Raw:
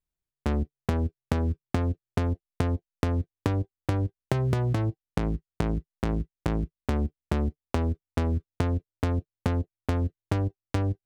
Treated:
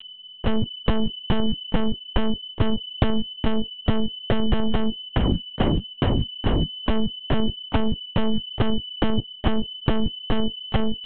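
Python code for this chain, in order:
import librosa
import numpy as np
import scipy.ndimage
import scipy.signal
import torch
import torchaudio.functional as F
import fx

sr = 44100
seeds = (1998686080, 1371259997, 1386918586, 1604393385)

y = x + 10.0 ** (-39.0 / 20.0) * np.sin(2.0 * np.pi * 3000.0 * np.arange(len(x)) / sr)
y = fx.lpc_monotone(y, sr, seeds[0], pitch_hz=220.0, order=8)
y = y * 10.0 ** (6.5 / 20.0)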